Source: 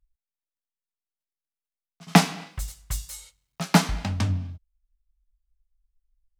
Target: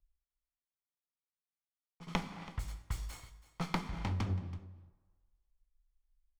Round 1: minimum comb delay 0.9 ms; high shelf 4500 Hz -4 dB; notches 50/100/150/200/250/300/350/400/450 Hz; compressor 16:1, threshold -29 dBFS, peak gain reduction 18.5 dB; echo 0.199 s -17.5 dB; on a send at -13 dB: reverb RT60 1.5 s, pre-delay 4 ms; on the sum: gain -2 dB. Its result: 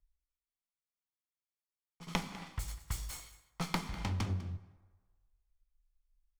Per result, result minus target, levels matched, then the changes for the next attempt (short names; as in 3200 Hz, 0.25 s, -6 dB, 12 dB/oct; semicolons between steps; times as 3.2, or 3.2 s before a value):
echo 0.13 s early; 8000 Hz band +7.0 dB
change: echo 0.329 s -17.5 dB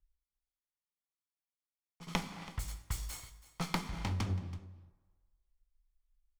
8000 Hz band +7.0 dB
change: high shelf 4500 Hz -14.5 dB